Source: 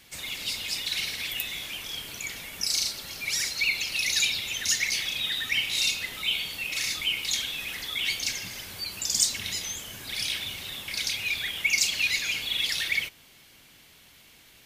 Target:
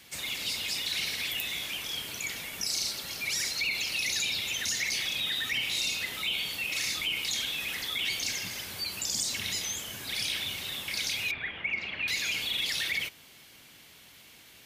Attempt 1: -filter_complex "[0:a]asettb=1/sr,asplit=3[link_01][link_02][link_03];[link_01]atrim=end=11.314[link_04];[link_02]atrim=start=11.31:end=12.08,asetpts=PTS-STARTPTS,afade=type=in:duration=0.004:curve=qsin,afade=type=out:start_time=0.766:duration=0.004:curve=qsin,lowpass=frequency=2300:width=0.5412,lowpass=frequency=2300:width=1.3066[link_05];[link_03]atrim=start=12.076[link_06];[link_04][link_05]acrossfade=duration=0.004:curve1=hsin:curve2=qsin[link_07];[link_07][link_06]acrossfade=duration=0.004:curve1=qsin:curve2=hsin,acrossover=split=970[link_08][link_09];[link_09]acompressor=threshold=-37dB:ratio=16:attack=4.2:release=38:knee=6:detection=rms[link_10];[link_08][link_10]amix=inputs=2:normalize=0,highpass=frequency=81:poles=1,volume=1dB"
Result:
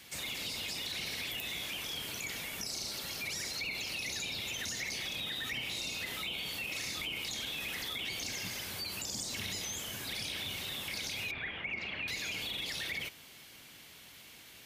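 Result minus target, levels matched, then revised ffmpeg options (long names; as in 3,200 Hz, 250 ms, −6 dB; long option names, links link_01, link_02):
downward compressor: peak gain reduction +9 dB
-filter_complex "[0:a]asettb=1/sr,asplit=3[link_01][link_02][link_03];[link_01]atrim=end=11.314[link_04];[link_02]atrim=start=11.31:end=12.08,asetpts=PTS-STARTPTS,afade=type=in:duration=0.004:curve=qsin,afade=type=out:start_time=0.766:duration=0.004:curve=qsin,lowpass=frequency=2300:width=0.5412,lowpass=frequency=2300:width=1.3066[link_05];[link_03]atrim=start=12.076[link_06];[link_04][link_05]acrossfade=duration=0.004:curve1=hsin:curve2=qsin[link_07];[link_07][link_06]acrossfade=duration=0.004:curve1=qsin:curve2=hsin,acrossover=split=970[link_08][link_09];[link_09]acompressor=threshold=-27.5dB:ratio=16:attack=4.2:release=38:knee=6:detection=rms[link_10];[link_08][link_10]amix=inputs=2:normalize=0,highpass=frequency=81:poles=1,volume=1dB"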